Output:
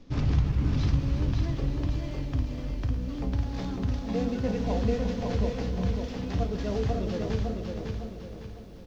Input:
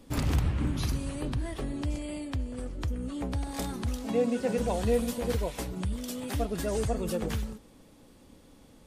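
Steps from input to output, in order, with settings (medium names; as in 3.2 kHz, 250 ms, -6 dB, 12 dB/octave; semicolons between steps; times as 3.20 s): CVSD coder 32 kbps; bass shelf 240 Hz +9 dB; feedback delay 554 ms, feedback 39%, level -4 dB; on a send at -9 dB: reverberation RT60 0.20 s, pre-delay 5 ms; on the sum: bit-crushed delay 349 ms, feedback 55%, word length 9-bit, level -11.5 dB; trim -4.5 dB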